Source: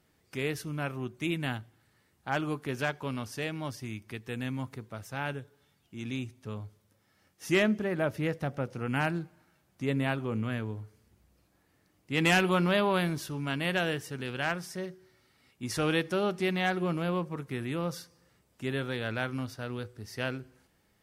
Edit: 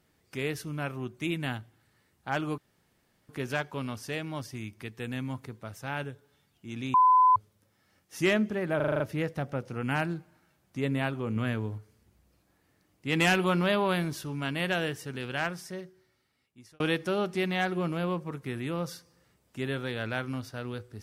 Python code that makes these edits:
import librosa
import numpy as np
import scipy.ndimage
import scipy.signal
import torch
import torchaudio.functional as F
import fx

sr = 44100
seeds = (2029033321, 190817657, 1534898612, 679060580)

y = fx.edit(x, sr, fx.insert_room_tone(at_s=2.58, length_s=0.71),
    fx.bleep(start_s=6.23, length_s=0.42, hz=1010.0, db=-16.5),
    fx.stutter(start_s=8.05, slice_s=0.04, count=7),
    fx.clip_gain(start_s=10.41, length_s=0.42, db=3.0),
    fx.fade_out_span(start_s=14.5, length_s=1.35), tone=tone)